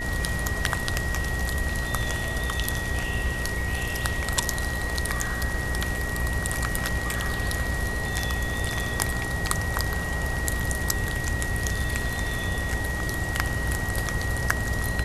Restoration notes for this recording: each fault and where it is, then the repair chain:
mains buzz 60 Hz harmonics 11 −33 dBFS
whistle 1,900 Hz −31 dBFS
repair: hum removal 60 Hz, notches 11
notch filter 1,900 Hz, Q 30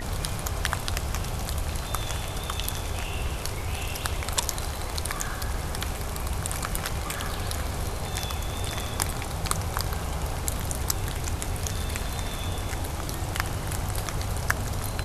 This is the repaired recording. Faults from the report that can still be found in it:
none of them is left

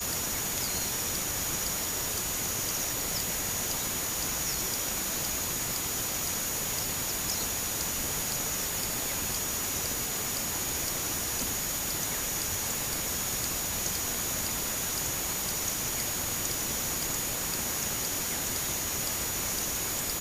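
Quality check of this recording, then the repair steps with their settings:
whistle 6,800 Hz −36 dBFS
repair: notch filter 6,800 Hz, Q 30

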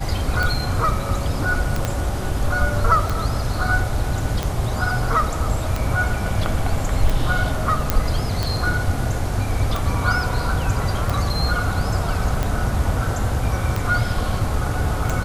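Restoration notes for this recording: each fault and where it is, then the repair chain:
scratch tick 45 rpm
0:01.85: click −7 dBFS
0:07.90: click −2 dBFS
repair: click removal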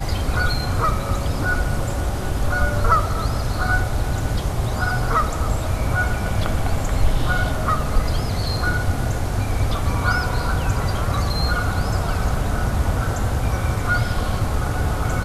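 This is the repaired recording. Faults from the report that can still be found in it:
0:01.85: click

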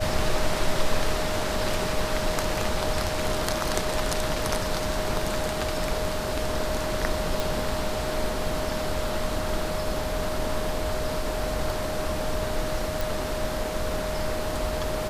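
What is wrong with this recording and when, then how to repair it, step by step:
whistle 620 Hz −31 dBFS
0:07.40: click
0:13.01: click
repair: click removal
notch filter 620 Hz, Q 30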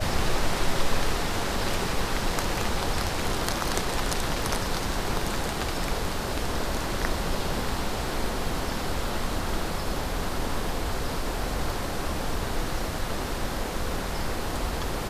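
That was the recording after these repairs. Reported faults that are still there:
none of them is left

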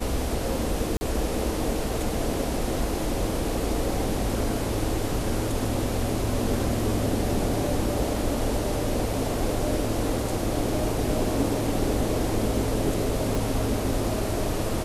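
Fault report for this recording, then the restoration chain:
0:00.97–0:01.01: drop-out 40 ms
0:13.35: click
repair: click removal
repair the gap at 0:00.97, 40 ms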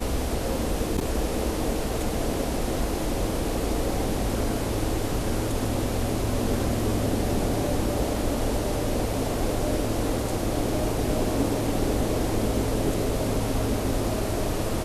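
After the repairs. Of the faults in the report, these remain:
0:13.35: click

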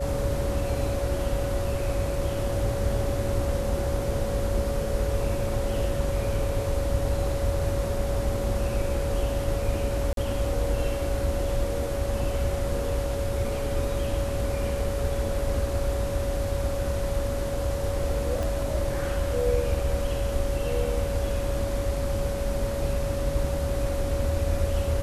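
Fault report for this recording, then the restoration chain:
whistle 560 Hz −30 dBFS
0:10.13–0:10.17: drop-out 42 ms
0:18.43: click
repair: click removal
notch filter 560 Hz, Q 30
repair the gap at 0:10.13, 42 ms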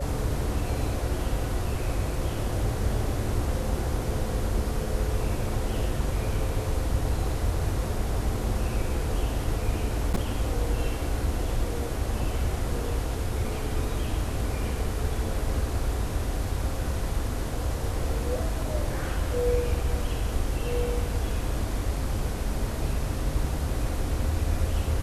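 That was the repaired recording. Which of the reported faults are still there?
0:18.43: click

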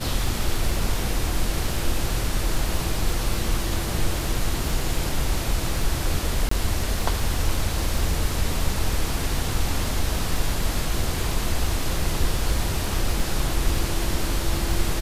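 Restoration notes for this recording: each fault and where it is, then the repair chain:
surface crackle 27 per second −28 dBFS
0:06.49–0:06.51: drop-out 24 ms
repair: click removal
repair the gap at 0:06.49, 24 ms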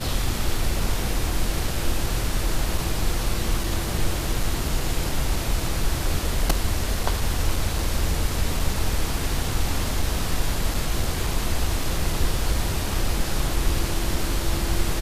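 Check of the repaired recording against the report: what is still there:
none of them is left

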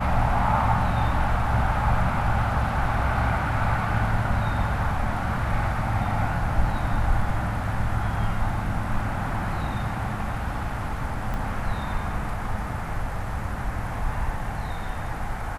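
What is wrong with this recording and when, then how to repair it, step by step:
0:11.34: click −19 dBFS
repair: click removal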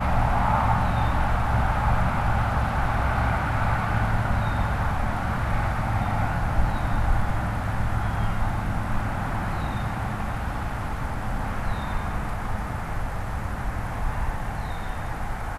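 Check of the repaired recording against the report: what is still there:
0:11.34: click

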